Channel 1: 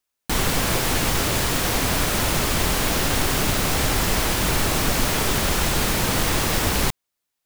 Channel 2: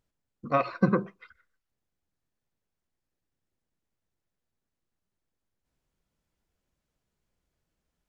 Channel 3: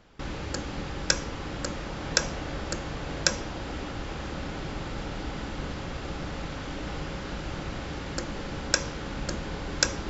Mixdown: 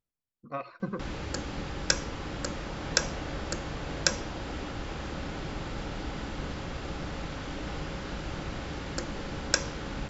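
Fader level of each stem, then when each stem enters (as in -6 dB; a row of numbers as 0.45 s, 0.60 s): mute, -11.0 dB, -1.5 dB; mute, 0.00 s, 0.80 s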